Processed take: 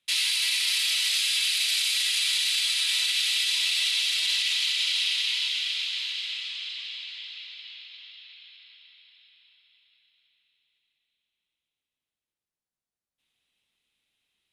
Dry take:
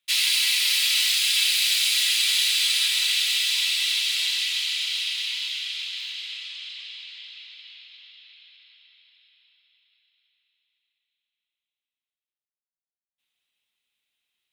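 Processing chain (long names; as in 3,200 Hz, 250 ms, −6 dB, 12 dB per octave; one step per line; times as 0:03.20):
brickwall limiter −18 dBFS, peak gain reduction 8.5 dB
Chebyshev low-pass filter 12,000 Hz, order 6
low-shelf EQ 500 Hz +10 dB
level +2 dB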